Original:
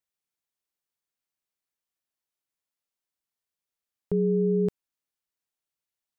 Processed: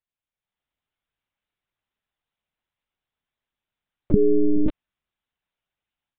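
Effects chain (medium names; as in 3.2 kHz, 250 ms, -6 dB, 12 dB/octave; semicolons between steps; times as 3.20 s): level rider gain up to 9 dB; monotone LPC vocoder at 8 kHz 300 Hz; trim -1.5 dB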